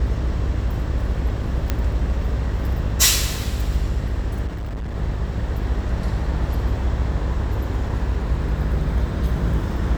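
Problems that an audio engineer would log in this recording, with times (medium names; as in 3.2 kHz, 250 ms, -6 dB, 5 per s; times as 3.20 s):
buzz 50 Hz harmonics 12 -26 dBFS
1.70 s: pop -8 dBFS
4.46–4.96 s: clipped -25 dBFS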